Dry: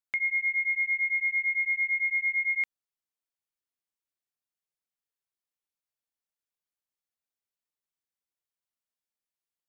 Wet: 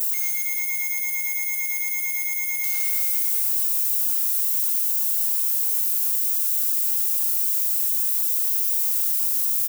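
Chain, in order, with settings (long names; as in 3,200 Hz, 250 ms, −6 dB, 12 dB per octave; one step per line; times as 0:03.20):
spike at every zero crossing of −29 dBFS
spectral tilt +4.5 dB per octave
comb filter 3.6 ms, depth 82%
single-tap delay 513 ms −15.5 dB
downward expander −6 dBFS
brickwall limiter −25.5 dBFS, peak gain reduction 10.5 dB
convolution reverb RT60 3.5 s, pre-delay 110 ms, DRR −3 dB
leveller curve on the samples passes 3
upward compression, threshold −29 dBFS
bass and treble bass −14 dB, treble +8 dB
level −6 dB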